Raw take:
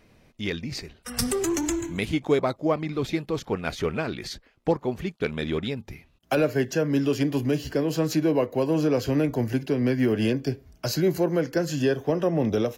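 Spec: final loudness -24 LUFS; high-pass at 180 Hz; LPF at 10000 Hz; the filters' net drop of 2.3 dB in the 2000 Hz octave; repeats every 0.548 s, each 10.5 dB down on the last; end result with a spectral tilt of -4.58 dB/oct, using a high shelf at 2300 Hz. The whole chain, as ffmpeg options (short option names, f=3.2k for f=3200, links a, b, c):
-af "highpass=180,lowpass=10k,equalizer=f=2k:t=o:g=-6,highshelf=f=2.3k:g=5.5,aecho=1:1:548|1096|1644:0.299|0.0896|0.0269,volume=2dB"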